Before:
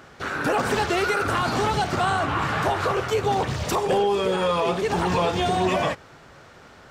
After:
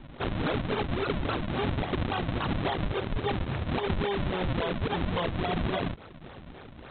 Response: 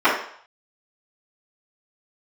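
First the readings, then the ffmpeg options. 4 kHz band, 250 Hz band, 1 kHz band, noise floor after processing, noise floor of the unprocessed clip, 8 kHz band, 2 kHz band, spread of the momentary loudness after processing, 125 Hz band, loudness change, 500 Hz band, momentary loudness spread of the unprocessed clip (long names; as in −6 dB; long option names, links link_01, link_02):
−6.5 dB, −3.5 dB, −11.0 dB, −47 dBFS, −48 dBFS, below −40 dB, −9.0 dB, 10 LU, −1.5 dB, −7.5 dB, −9.0 dB, 3 LU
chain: -af "acompressor=threshold=-29dB:ratio=5,aresample=8000,acrusher=samples=11:mix=1:aa=0.000001:lfo=1:lforange=17.6:lforate=3.6,aresample=44100,volume=2dB"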